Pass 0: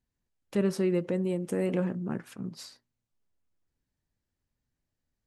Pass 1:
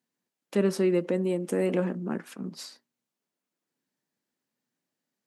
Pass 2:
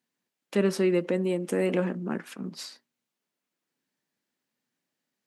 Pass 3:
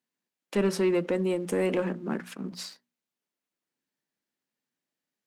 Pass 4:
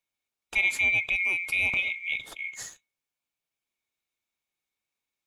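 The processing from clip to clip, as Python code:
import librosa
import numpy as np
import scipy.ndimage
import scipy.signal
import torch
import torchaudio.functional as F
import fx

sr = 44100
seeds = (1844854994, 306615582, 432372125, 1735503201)

y1 = scipy.signal.sosfilt(scipy.signal.butter(4, 190.0, 'highpass', fs=sr, output='sos'), x)
y1 = F.gain(torch.from_numpy(y1), 3.5).numpy()
y2 = fx.peak_eq(y1, sr, hz=2500.0, db=4.0, octaves=2.0)
y3 = fx.leveller(y2, sr, passes=1)
y3 = fx.hum_notches(y3, sr, base_hz=60, count=4)
y3 = F.gain(torch.from_numpy(y3), -3.0).numpy()
y4 = fx.band_swap(y3, sr, width_hz=2000)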